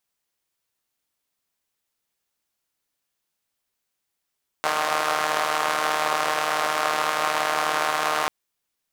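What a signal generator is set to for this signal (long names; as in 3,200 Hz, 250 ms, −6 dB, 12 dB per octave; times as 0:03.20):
pulse-train model of a four-cylinder engine, steady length 3.64 s, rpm 4,600, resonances 730/1,100 Hz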